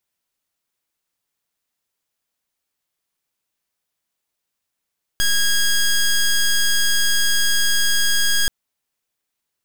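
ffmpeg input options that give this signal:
ffmpeg -f lavfi -i "aevalsrc='0.15*(2*lt(mod(1640*t,1),0.12)-1)':duration=3.28:sample_rate=44100" out.wav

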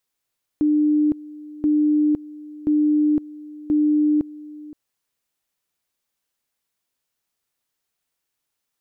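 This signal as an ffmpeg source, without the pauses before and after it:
ffmpeg -f lavfi -i "aevalsrc='pow(10,(-14.5-20*gte(mod(t,1.03),0.51))/20)*sin(2*PI*300*t)':duration=4.12:sample_rate=44100" out.wav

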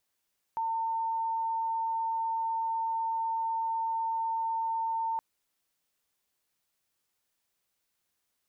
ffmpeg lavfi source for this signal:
ffmpeg -f lavfi -i "sine=frequency=904:duration=4.62:sample_rate=44100,volume=-9.94dB" out.wav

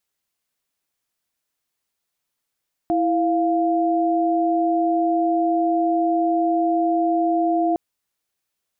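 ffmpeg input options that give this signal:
ffmpeg -f lavfi -i "aevalsrc='0.106*(sin(2*PI*329.63*t)+sin(2*PI*698.46*t))':duration=4.86:sample_rate=44100" out.wav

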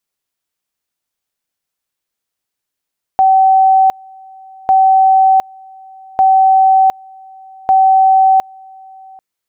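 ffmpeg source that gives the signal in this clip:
ffmpeg -f lavfi -i "aevalsrc='pow(10,(-5.5-28*gte(mod(t,1.5),0.71))/20)*sin(2*PI*765*t)':duration=6:sample_rate=44100" out.wav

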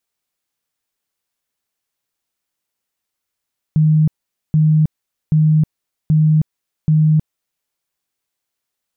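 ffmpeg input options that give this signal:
ffmpeg -f lavfi -i "aevalsrc='0.355*sin(2*PI*155*mod(t,0.78))*lt(mod(t,0.78),49/155)':duration=3.9:sample_rate=44100" out.wav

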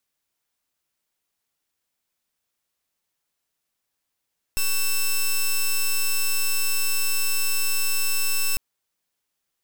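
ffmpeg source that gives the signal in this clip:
ffmpeg -f lavfi -i "aevalsrc='0.0891*(2*lt(mod(2660*t,1),0.08)-1)':duration=4:sample_rate=44100" out.wav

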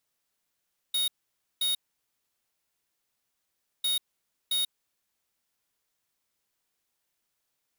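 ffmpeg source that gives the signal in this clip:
ffmpeg -f lavfi -i "aevalsrc='0.0447*(2*lt(mod(3740*t,1),0.5)-1)*clip(min(mod(mod(t,2.9),0.67),0.14-mod(mod(t,2.9),0.67))/0.005,0,1)*lt(mod(t,2.9),1.34)':duration=5.8:sample_rate=44100" out.wav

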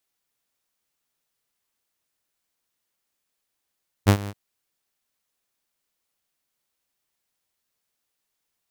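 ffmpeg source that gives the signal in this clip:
ffmpeg -f lavfi -i "aevalsrc='0.398*(2*mod(101*t,1)-1)':duration=0.276:sample_rate=44100,afade=type=in:duration=0.029,afade=type=out:start_time=0.029:duration=0.079:silence=0.112,afade=type=out:start_time=0.23:duration=0.046" out.wav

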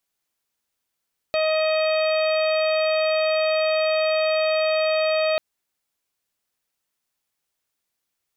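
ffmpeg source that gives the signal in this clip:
ffmpeg -f lavfi -i "aevalsrc='0.112*sin(2*PI*628*t)+0.0282*sin(2*PI*1256*t)+0.0188*sin(2*PI*1884*t)+0.0398*sin(2*PI*2512*t)+0.0112*sin(2*PI*3140*t)+0.02*sin(2*PI*3768*t)+0.0224*sin(2*PI*4396*t)':duration=4.04:sample_rate=44100" out.wav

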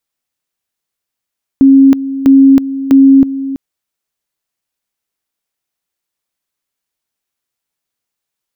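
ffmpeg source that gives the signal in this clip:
ffmpeg -f lavfi -i "aevalsrc='pow(10,(-1.5-14*gte(mod(t,0.65),0.32))/20)*sin(2*PI*271*t)':duration=1.95:sample_rate=44100" out.wav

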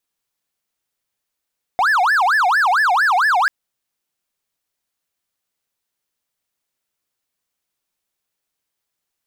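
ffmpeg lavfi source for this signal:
ffmpeg -f lavfi -i "aevalsrc='0.299*(1-4*abs(mod((1235*t-525/(2*PI*4.4)*sin(2*PI*4.4*t))+0.25,1)-0.5))':duration=1.69:sample_rate=44100" out.wav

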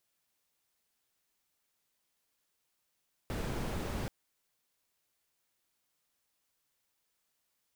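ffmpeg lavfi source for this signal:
ffmpeg -f lavfi -i "anoisesrc=color=brown:amplitude=0.0741:duration=0.78:sample_rate=44100:seed=1" out.wav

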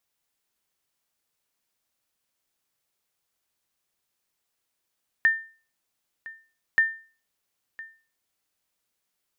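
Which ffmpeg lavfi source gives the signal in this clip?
ffmpeg -f lavfi -i "aevalsrc='0.237*(sin(2*PI*1800*mod(t,1.53))*exp(-6.91*mod(t,1.53)/0.38)+0.1*sin(2*PI*1800*max(mod(t,1.53)-1.01,0))*exp(-6.91*max(mod(t,1.53)-1.01,0)/0.38))':duration=3.06:sample_rate=44100" out.wav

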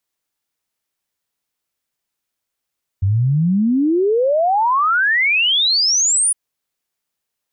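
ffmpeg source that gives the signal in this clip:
ffmpeg -f lavfi -i "aevalsrc='0.237*clip(min(t,3.31-t)/0.01,0,1)*sin(2*PI*92*3.31/log(10000/92)*(exp(log(10000/92)*t/3.31)-1))':duration=3.31:sample_rate=44100" out.wav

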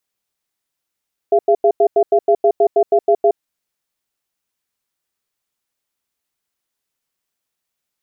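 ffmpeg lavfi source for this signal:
ffmpeg -f lavfi -i "aevalsrc='0.266*(sin(2*PI*409*t)+sin(2*PI*681*t))*clip(min(mod(t,0.16),0.07-mod(t,0.16))/0.005,0,1)':duration=2.06:sample_rate=44100" out.wav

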